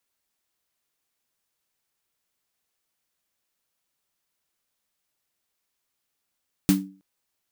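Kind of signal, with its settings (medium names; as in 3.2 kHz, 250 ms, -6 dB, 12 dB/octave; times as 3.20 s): snare drum length 0.32 s, tones 190 Hz, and 290 Hz, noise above 510 Hz, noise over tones -8.5 dB, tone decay 0.40 s, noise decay 0.21 s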